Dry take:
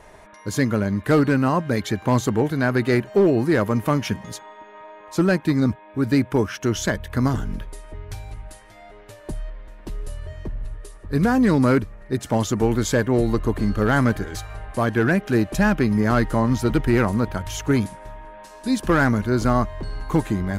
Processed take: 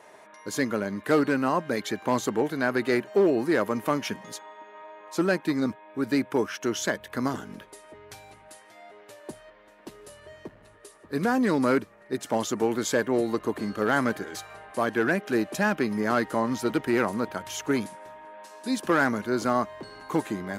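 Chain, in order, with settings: HPF 270 Hz 12 dB/oct; gain -3 dB

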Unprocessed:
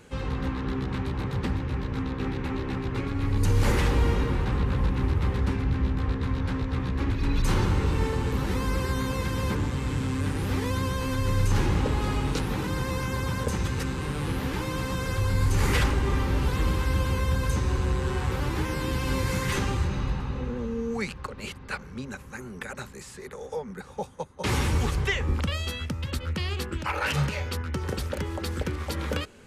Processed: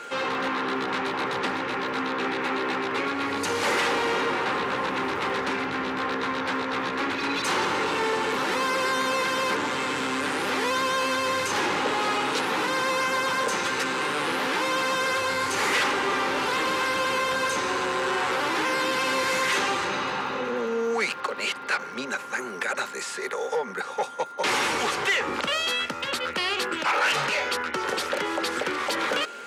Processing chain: overdrive pedal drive 21 dB, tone 4500 Hz, clips at -13 dBFS; LPF 12000 Hz 12 dB/oct; crackle 72/s -42 dBFS; HPF 310 Hz 12 dB/oct; in parallel at -3 dB: limiter -21 dBFS, peak gain reduction 7.5 dB; on the sum: whine 1400 Hz -34 dBFS; gain -4.5 dB

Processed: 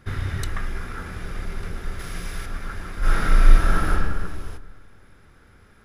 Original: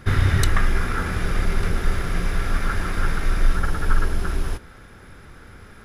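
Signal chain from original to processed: 1.99–2.46 high shelf 2700 Hz +10 dB; 2.99–3.9 reverb throw, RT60 1.6 s, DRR -12 dB; gain -9 dB

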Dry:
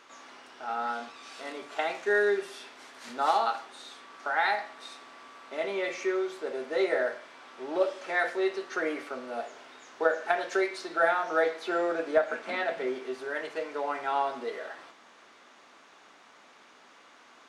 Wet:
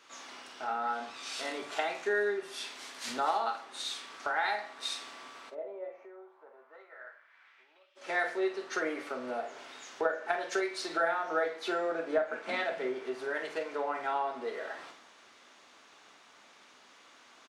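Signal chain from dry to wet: compressor 3:1, threshold -41 dBFS, peak gain reduction 16.5 dB; 5.49–7.95 band-pass 480 Hz -> 2700 Hz, Q 2.9; doubler 48 ms -10 dB; three-band expander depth 70%; gain +7 dB

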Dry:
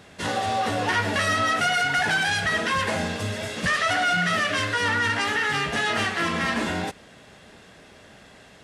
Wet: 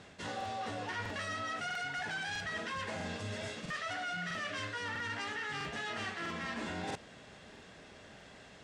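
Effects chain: LPF 8600 Hz 24 dB/oct; reverse; compressor 6:1, threshold -32 dBFS, peak gain reduction 11.5 dB; reverse; crackling interface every 0.65 s, samples 2048, repeat, from 0.36; gain -5 dB

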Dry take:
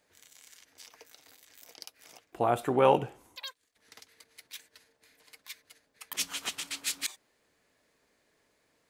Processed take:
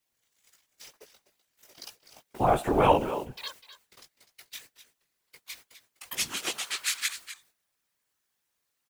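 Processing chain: high-pass sweep 84 Hz -> 1400 Hz, 6.12–6.77; in parallel at -6.5 dB: requantised 8-bit, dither triangular; on the sum: gate -47 dBFS, range -25 dB; on a send: echo 0.251 s -13 dB; on the sum: chorus 2.1 Hz, delay 16 ms, depth 3.7 ms; whisperiser; gain +2.5 dB

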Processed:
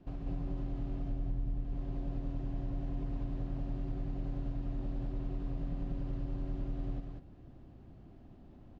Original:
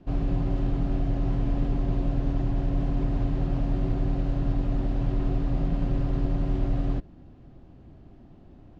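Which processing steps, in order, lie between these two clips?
1.11–1.61 low shelf 180 Hz +10.5 dB; compressor 5:1, threshold -31 dBFS, peak gain reduction 17.5 dB; echo 0.193 s -3 dB; gain -6.5 dB

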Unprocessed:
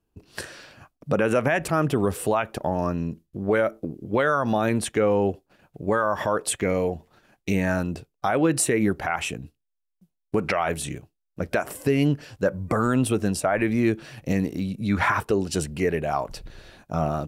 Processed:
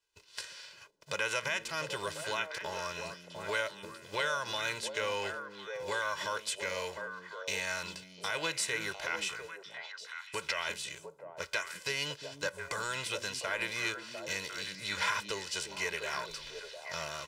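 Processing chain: spectral whitening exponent 0.6; pre-emphasis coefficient 0.97; comb 2 ms, depth 76%; in parallel at -1 dB: compressor, threshold -41 dBFS, peak gain reduction 22.5 dB; on the sum: air absorption 140 m; delay with a stepping band-pass 0.35 s, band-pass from 220 Hz, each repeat 1.4 oct, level -1 dB; gain +1.5 dB

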